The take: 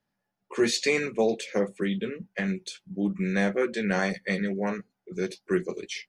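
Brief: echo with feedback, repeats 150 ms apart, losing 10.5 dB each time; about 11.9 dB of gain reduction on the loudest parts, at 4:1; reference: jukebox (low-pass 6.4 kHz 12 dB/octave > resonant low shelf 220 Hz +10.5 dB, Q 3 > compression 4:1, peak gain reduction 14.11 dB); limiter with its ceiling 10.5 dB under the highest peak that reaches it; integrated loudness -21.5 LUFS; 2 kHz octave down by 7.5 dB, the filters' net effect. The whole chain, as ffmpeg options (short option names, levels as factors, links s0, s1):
-af "equalizer=f=2000:t=o:g=-9,acompressor=threshold=0.02:ratio=4,alimiter=level_in=2.82:limit=0.0631:level=0:latency=1,volume=0.355,lowpass=6400,lowshelf=f=220:t=q:w=3:g=10.5,aecho=1:1:150|300|450:0.299|0.0896|0.0269,acompressor=threshold=0.00891:ratio=4,volume=13.3"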